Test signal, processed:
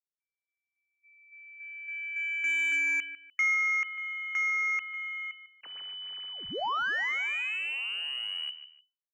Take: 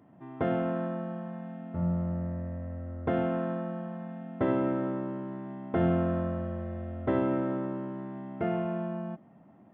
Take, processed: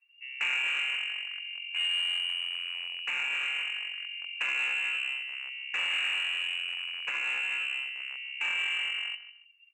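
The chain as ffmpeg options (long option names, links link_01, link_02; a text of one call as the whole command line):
ffmpeg -i in.wav -filter_complex "[0:a]afftdn=noise_reduction=24:noise_floor=-43,aeval=exprs='0.188*(cos(1*acos(clip(val(0)/0.188,-1,1)))-cos(1*PI/2))+0.00473*(cos(5*acos(clip(val(0)/0.188,-1,1)))-cos(5*PI/2))+0.075*(cos(6*acos(clip(val(0)/0.188,-1,1)))-cos(6*PI/2))+0.0596*(cos(8*acos(clip(val(0)/0.188,-1,1)))-cos(8*PI/2))':channel_layout=same,asplit=2[link_01][link_02];[link_02]acrusher=bits=4:mix=0:aa=0.000001,volume=-11.5dB[link_03];[link_01][link_03]amix=inputs=2:normalize=0,equalizer=frequency=1000:width_type=o:width=2.7:gain=4,lowpass=frequency=2600:width_type=q:width=0.5098,lowpass=frequency=2600:width_type=q:width=0.6013,lowpass=frequency=2600:width_type=q:width=0.9,lowpass=frequency=2600:width_type=q:width=2.563,afreqshift=-3000,alimiter=limit=-18.5dB:level=0:latency=1:release=32,highpass=frequency=340:poles=1,aecho=1:1:149|298:0.168|0.0386,asoftclip=type=tanh:threshold=-20dB,bandreject=frequency=640:width=12,adynamicequalizer=threshold=0.0126:dfrequency=1800:dqfactor=0.7:tfrequency=1800:tqfactor=0.7:attack=5:release=100:ratio=0.375:range=2.5:mode=cutabove:tftype=highshelf" out.wav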